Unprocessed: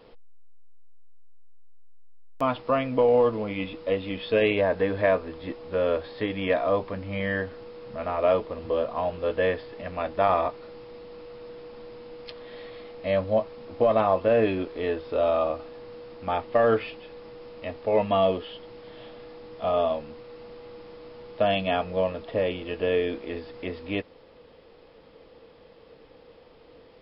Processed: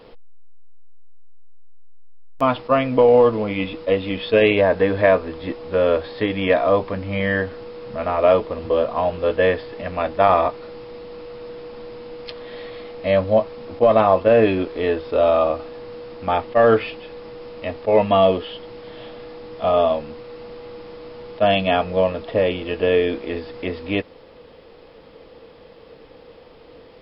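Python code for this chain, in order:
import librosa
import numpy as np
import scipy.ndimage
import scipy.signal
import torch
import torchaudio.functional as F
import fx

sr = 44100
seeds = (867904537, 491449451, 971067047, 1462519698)

y = fx.attack_slew(x, sr, db_per_s=560.0)
y = y * 10.0 ** (7.0 / 20.0)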